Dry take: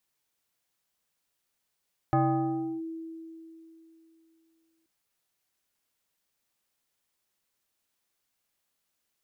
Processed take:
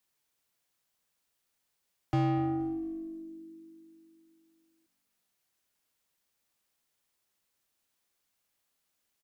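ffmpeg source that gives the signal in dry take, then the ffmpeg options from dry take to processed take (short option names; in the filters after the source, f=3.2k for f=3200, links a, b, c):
-f lavfi -i "aevalsrc='0.106*pow(10,-3*t/3.08)*sin(2*PI*326*t+1.6*clip(1-t/0.69,0,1)*sin(2*PI*1.41*326*t))':d=2.73:s=44100"
-filter_complex "[0:a]acrossover=split=100|400[a][b][c];[c]asoftclip=type=tanh:threshold=-34dB[d];[a][b][d]amix=inputs=3:normalize=0,asplit=4[e][f][g][h];[f]adelay=232,afreqshift=-49,volume=-21.5dB[i];[g]adelay=464,afreqshift=-98,volume=-28.6dB[j];[h]adelay=696,afreqshift=-147,volume=-35.8dB[k];[e][i][j][k]amix=inputs=4:normalize=0"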